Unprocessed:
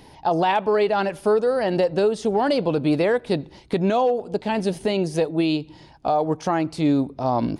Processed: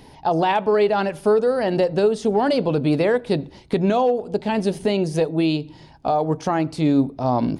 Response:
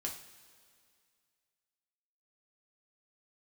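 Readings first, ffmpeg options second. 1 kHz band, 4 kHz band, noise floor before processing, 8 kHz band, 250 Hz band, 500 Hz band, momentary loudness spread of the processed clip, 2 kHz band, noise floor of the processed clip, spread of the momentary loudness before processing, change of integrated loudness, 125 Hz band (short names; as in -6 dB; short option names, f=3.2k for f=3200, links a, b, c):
+0.5 dB, +0.5 dB, -48 dBFS, n/a, +2.0 dB, +1.5 dB, 5 LU, +0.5 dB, -46 dBFS, 5 LU, +1.5 dB, +3.0 dB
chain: -filter_complex "[0:a]asplit=2[a][b];[b]tiltshelf=f=690:g=9.5[c];[1:a]atrim=start_sample=2205,afade=t=out:st=0.17:d=0.01,atrim=end_sample=7938[d];[c][d]afir=irnorm=-1:irlink=0,volume=-14dB[e];[a][e]amix=inputs=2:normalize=0"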